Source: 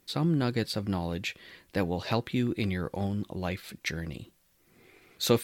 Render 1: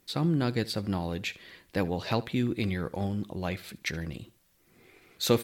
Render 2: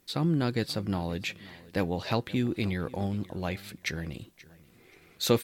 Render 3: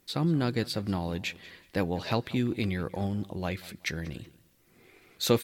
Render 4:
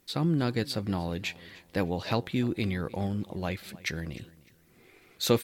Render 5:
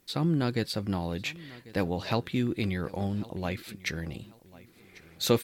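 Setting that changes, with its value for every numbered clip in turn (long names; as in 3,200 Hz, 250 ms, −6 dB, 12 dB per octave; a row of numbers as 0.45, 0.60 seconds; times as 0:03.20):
repeating echo, delay time: 73, 530, 187, 303, 1,094 milliseconds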